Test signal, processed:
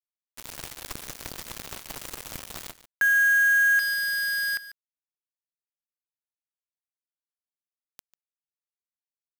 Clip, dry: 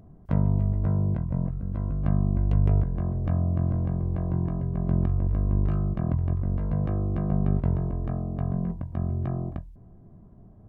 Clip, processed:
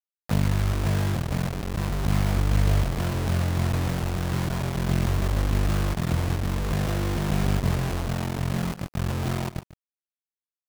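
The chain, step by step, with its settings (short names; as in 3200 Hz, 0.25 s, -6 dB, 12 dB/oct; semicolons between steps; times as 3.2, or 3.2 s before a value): bit-crush 5-bit; echo 0.145 s -15.5 dB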